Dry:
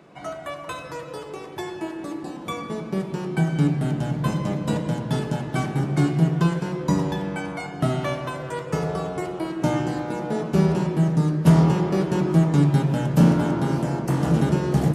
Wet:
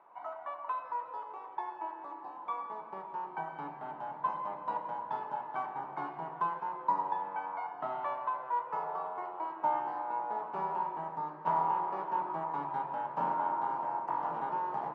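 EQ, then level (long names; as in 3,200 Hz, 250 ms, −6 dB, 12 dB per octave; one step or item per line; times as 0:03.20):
four-pole ladder band-pass 1,000 Hz, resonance 75%
spectral tilt −2.5 dB per octave
+2.5 dB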